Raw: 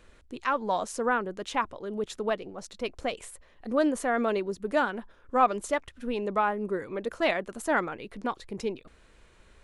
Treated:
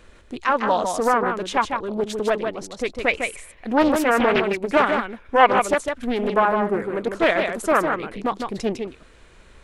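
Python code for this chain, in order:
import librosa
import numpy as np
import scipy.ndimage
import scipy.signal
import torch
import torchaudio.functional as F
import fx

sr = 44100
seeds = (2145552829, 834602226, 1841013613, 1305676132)

y = fx.peak_eq(x, sr, hz=2300.0, db=14.0, octaves=0.33, at=(3.02, 5.51))
y = y + 10.0 ** (-5.5 / 20.0) * np.pad(y, (int(154 * sr / 1000.0), 0))[:len(y)]
y = fx.doppler_dist(y, sr, depth_ms=0.55)
y = y * librosa.db_to_amplitude(7.0)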